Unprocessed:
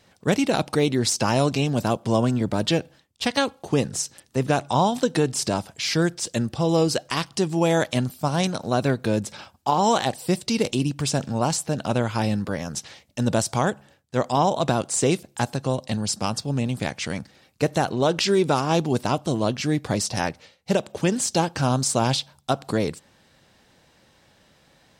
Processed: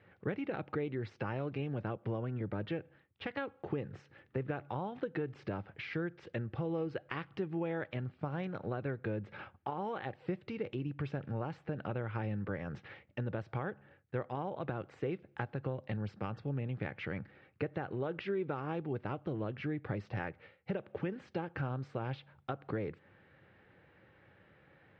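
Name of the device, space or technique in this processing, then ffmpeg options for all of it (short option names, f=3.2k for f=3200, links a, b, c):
bass amplifier: -af "acompressor=threshold=-30dB:ratio=6,highpass=86,equalizer=f=100:t=q:w=4:g=3,equalizer=f=160:t=q:w=4:g=-3,equalizer=f=240:t=q:w=4:g=-9,equalizer=f=670:t=q:w=4:g=-8,equalizer=f=990:t=q:w=4:g=-8,lowpass=f=2.2k:w=0.5412,lowpass=f=2.2k:w=1.3066,volume=-1dB"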